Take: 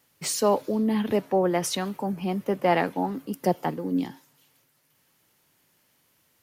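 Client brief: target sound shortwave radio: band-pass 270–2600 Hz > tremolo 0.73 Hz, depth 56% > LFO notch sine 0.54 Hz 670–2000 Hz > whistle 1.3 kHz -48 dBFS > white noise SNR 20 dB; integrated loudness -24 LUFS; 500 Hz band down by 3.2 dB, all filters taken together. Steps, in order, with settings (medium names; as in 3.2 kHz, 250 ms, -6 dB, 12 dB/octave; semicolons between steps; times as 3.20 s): band-pass 270–2600 Hz; peaking EQ 500 Hz -3.5 dB; tremolo 0.73 Hz, depth 56%; LFO notch sine 0.54 Hz 670–2000 Hz; whistle 1.3 kHz -48 dBFS; white noise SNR 20 dB; trim +10.5 dB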